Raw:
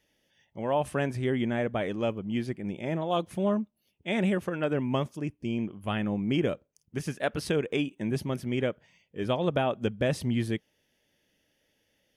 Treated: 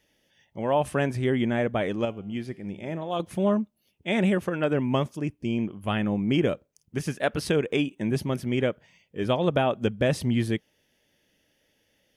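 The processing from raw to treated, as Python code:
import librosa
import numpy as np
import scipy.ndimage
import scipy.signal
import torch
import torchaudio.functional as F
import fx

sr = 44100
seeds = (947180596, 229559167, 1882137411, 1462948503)

y = fx.comb_fb(x, sr, f0_hz=99.0, decay_s=0.96, harmonics='all', damping=0.0, mix_pct=50, at=(2.05, 3.2))
y = y * librosa.db_to_amplitude(3.5)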